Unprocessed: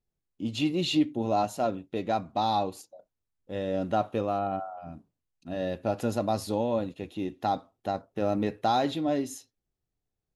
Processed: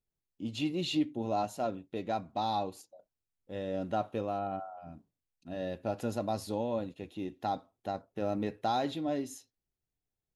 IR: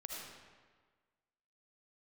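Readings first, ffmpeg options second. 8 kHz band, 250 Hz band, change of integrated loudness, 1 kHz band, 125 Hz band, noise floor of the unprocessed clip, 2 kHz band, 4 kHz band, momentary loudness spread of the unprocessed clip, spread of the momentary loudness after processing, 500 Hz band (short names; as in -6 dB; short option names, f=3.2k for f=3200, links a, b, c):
-5.5 dB, -5.5 dB, -5.5 dB, -5.5 dB, -5.5 dB, under -85 dBFS, -5.5 dB, -5.5 dB, 10 LU, 10 LU, -5.5 dB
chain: -af "bandreject=f=1.2k:w=20,volume=-5.5dB"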